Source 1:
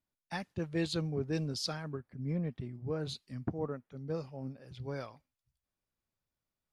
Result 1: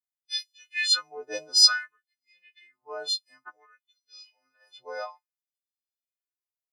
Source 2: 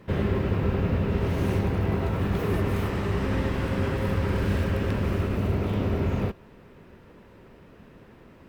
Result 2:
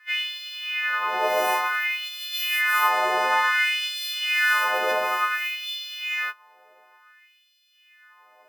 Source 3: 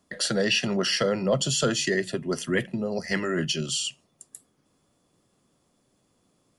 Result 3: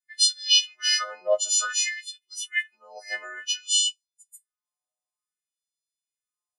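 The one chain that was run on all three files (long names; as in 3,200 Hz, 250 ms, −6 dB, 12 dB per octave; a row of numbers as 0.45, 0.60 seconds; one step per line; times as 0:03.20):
every partial snapped to a pitch grid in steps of 3 semitones
auto-filter high-pass sine 0.56 Hz 660–3,800 Hz
every bin expanded away from the loudest bin 1.5 to 1
loudness normalisation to −23 LKFS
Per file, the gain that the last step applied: +10.5, +8.0, −4.5 decibels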